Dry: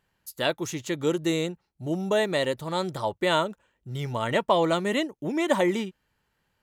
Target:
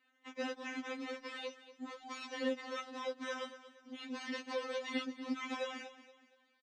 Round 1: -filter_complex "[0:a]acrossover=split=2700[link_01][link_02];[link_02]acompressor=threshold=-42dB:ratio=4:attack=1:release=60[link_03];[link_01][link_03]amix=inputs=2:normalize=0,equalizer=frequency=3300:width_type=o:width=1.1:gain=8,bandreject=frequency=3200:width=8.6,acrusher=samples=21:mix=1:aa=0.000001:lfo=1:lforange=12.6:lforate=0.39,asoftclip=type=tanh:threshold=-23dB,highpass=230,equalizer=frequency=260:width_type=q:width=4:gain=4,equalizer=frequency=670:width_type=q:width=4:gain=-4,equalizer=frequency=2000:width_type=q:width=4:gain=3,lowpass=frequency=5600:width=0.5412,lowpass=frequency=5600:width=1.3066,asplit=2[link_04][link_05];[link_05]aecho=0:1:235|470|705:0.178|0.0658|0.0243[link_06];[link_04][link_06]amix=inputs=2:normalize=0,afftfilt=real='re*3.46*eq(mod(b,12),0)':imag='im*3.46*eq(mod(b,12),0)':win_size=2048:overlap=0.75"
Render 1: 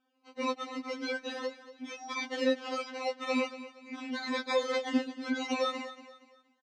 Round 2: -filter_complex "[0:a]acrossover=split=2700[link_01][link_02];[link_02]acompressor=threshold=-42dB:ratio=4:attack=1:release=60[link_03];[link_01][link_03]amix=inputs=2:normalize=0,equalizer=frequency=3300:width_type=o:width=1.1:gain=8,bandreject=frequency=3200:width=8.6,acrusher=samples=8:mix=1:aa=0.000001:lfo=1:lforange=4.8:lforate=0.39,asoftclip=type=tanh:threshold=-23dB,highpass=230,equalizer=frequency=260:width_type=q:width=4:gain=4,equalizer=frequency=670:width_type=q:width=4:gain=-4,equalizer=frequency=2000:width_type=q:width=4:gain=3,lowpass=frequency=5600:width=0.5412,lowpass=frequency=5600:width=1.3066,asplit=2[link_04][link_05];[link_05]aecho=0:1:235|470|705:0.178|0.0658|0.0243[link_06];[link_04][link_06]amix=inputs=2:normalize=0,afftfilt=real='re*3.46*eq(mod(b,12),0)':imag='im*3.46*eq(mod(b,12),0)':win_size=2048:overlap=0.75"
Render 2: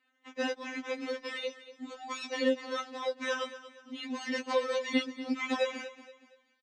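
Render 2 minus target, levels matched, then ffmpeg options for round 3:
soft clipping: distortion −7 dB
-filter_complex "[0:a]acrossover=split=2700[link_01][link_02];[link_02]acompressor=threshold=-42dB:ratio=4:attack=1:release=60[link_03];[link_01][link_03]amix=inputs=2:normalize=0,equalizer=frequency=3300:width_type=o:width=1.1:gain=8,bandreject=frequency=3200:width=8.6,acrusher=samples=8:mix=1:aa=0.000001:lfo=1:lforange=4.8:lforate=0.39,asoftclip=type=tanh:threshold=-34.5dB,highpass=230,equalizer=frequency=260:width_type=q:width=4:gain=4,equalizer=frequency=670:width_type=q:width=4:gain=-4,equalizer=frequency=2000:width_type=q:width=4:gain=3,lowpass=frequency=5600:width=0.5412,lowpass=frequency=5600:width=1.3066,asplit=2[link_04][link_05];[link_05]aecho=0:1:235|470|705:0.178|0.0658|0.0243[link_06];[link_04][link_06]amix=inputs=2:normalize=0,afftfilt=real='re*3.46*eq(mod(b,12),0)':imag='im*3.46*eq(mod(b,12),0)':win_size=2048:overlap=0.75"

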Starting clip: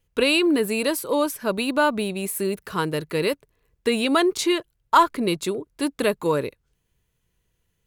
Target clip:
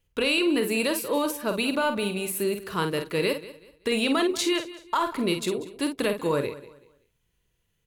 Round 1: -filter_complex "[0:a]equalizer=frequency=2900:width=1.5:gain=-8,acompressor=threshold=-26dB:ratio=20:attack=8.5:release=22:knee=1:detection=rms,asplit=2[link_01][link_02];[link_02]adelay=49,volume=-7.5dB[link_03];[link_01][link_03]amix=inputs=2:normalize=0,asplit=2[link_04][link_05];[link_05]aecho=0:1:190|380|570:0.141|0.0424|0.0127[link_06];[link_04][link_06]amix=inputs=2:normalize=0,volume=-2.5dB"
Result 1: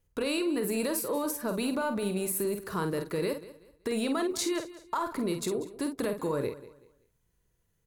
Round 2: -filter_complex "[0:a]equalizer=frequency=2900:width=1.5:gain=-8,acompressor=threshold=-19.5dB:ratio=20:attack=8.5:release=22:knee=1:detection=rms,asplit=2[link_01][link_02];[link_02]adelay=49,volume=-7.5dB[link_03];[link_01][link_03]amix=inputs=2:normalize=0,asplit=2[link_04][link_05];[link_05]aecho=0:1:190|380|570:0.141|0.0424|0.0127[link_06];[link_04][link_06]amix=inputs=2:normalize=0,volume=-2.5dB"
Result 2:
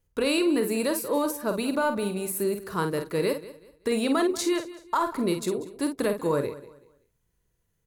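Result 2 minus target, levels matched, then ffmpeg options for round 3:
4,000 Hz band −5.5 dB
-filter_complex "[0:a]equalizer=frequency=2900:width=1.5:gain=3,acompressor=threshold=-19.5dB:ratio=20:attack=8.5:release=22:knee=1:detection=rms,asplit=2[link_01][link_02];[link_02]adelay=49,volume=-7.5dB[link_03];[link_01][link_03]amix=inputs=2:normalize=0,asplit=2[link_04][link_05];[link_05]aecho=0:1:190|380|570:0.141|0.0424|0.0127[link_06];[link_04][link_06]amix=inputs=2:normalize=0,volume=-2.5dB"

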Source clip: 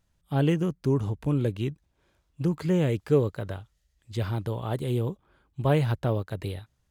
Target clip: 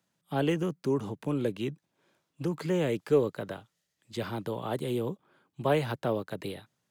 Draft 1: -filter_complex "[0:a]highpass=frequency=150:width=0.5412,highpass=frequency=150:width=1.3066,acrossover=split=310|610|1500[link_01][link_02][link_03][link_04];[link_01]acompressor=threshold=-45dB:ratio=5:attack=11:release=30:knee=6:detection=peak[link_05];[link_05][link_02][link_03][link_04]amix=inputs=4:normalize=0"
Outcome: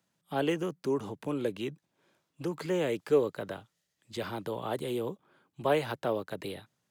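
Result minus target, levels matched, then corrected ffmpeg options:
downward compressor: peak gain reduction +9 dB
-filter_complex "[0:a]highpass=frequency=150:width=0.5412,highpass=frequency=150:width=1.3066,acrossover=split=310|610|1500[link_01][link_02][link_03][link_04];[link_01]acompressor=threshold=-34dB:ratio=5:attack=11:release=30:knee=6:detection=peak[link_05];[link_05][link_02][link_03][link_04]amix=inputs=4:normalize=0"

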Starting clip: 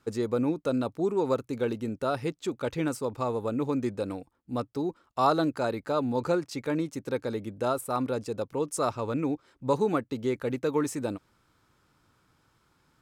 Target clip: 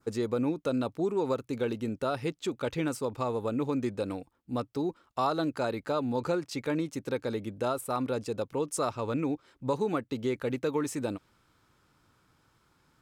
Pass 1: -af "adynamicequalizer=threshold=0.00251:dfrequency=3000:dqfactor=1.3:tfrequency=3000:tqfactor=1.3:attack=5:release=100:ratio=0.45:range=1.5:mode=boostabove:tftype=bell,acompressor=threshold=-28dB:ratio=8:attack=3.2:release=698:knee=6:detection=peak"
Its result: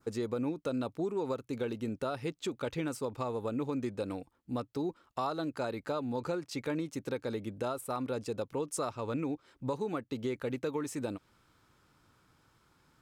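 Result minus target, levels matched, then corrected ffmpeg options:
downward compressor: peak gain reduction +6 dB
-af "adynamicequalizer=threshold=0.00251:dfrequency=3000:dqfactor=1.3:tfrequency=3000:tqfactor=1.3:attack=5:release=100:ratio=0.45:range=1.5:mode=boostabove:tftype=bell,acompressor=threshold=-21dB:ratio=8:attack=3.2:release=698:knee=6:detection=peak"

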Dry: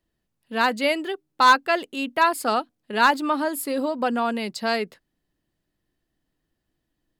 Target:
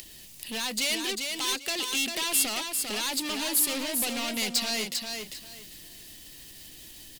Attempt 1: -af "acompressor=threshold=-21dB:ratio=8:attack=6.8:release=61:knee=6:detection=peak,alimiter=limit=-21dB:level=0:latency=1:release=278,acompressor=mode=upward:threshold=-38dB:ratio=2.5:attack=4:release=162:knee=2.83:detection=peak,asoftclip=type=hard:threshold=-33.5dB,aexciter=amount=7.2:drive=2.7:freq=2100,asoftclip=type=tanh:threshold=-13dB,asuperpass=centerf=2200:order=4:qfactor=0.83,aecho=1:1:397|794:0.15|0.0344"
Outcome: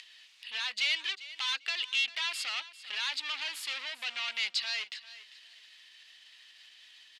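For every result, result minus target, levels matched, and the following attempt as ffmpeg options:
echo-to-direct −11.5 dB; soft clipping: distortion −8 dB; 2,000 Hz band +4.5 dB
-af "acompressor=threshold=-21dB:ratio=8:attack=6.8:release=61:knee=6:detection=peak,alimiter=limit=-21dB:level=0:latency=1:release=278,acompressor=mode=upward:threshold=-38dB:ratio=2.5:attack=4:release=162:knee=2.83:detection=peak,asoftclip=type=hard:threshold=-33.5dB,aexciter=amount=7.2:drive=2.7:freq=2100,asoftclip=type=tanh:threshold=-13dB,asuperpass=centerf=2200:order=4:qfactor=0.83,aecho=1:1:397|794|1191:0.562|0.129|0.0297"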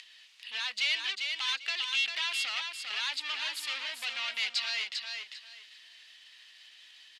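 soft clipping: distortion −8 dB; 2,000 Hz band +5.0 dB
-af "acompressor=threshold=-21dB:ratio=8:attack=6.8:release=61:knee=6:detection=peak,alimiter=limit=-21dB:level=0:latency=1:release=278,acompressor=mode=upward:threshold=-38dB:ratio=2.5:attack=4:release=162:knee=2.83:detection=peak,asoftclip=type=hard:threshold=-33.5dB,aexciter=amount=7.2:drive=2.7:freq=2100,asoftclip=type=tanh:threshold=-19.5dB,asuperpass=centerf=2200:order=4:qfactor=0.83,aecho=1:1:397|794|1191:0.562|0.129|0.0297"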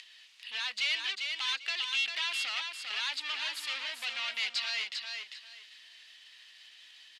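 2,000 Hz band +5.0 dB
-af "acompressor=threshold=-21dB:ratio=8:attack=6.8:release=61:knee=6:detection=peak,alimiter=limit=-21dB:level=0:latency=1:release=278,acompressor=mode=upward:threshold=-38dB:ratio=2.5:attack=4:release=162:knee=2.83:detection=peak,asoftclip=type=hard:threshold=-33.5dB,aexciter=amount=7.2:drive=2.7:freq=2100,asoftclip=type=tanh:threshold=-19.5dB,aecho=1:1:397|794|1191:0.562|0.129|0.0297"

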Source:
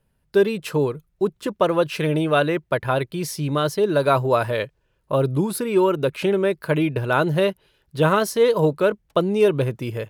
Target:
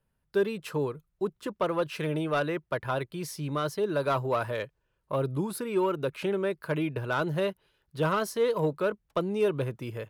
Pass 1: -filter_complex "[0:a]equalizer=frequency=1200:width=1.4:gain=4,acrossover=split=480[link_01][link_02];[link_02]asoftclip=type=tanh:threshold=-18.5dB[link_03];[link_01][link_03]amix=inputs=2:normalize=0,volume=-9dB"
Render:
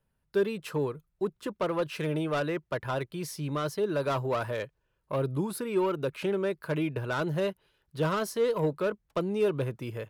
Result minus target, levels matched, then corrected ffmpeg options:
soft clipping: distortion +6 dB
-filter_complex "[0:a]equalizer=frequency=1200:width=1.4:gain=4,acrossover=split=480[link_01][link_02];[link_02]asoftclip=type=tanh:threshold=-12.5dB[link_03];[link_01][link_03]amix=inputs=2:normalize=0,volume=-9dB"

